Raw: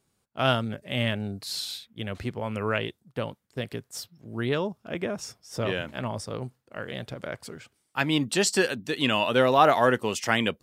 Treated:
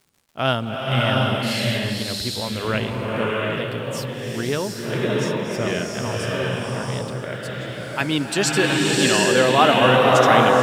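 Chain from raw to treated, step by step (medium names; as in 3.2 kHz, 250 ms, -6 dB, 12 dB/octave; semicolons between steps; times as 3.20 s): crackle 170 per s -48 dBFS; swelling reverb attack 740 ms, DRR -3.5 dB; trim +2.5 dB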